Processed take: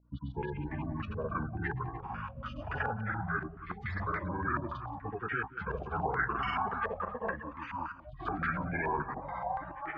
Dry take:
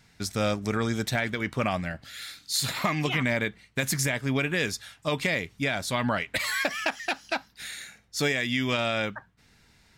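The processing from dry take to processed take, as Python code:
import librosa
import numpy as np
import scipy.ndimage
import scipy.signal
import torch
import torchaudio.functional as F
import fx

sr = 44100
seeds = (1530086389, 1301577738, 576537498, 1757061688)

y = fx.pitch_bins(x, sr, semitones=-6.5)
y = fx.notch(y, sr, hz=590.0, q=12.0)
y = fx.spec_gate(y, sr, threshold_db=-15, keep='strong')
y = scipy.signal.sosfilt(scipy.signal.butter(2, 64.0, 'highpass', fs=sr, output='sos'), y)
y = fx.level_steps(y, sr, step_db=12)
y = fx.granulator(y, sr, seeds[0], grain_ms=100.0, per_s=20.0, spray_ms=100.0, spread_st=0)
y = fx.add_hum(y, sr, base_hz=60, snr_db=27)
y = fx.echo_pitch(y, sr, ms=189, semitones=-6, count=2, db_per_echo=-6.0)
y = y + 10.0 ** (-14.0 / 20.0) * np.pad(y, (int(180 * sr / 1000.0), 0))[:len(y)]
y = fx.filter_held_lowpass(y, sr, hz=7.0, low_hz=650.0, high_hz=2000.0)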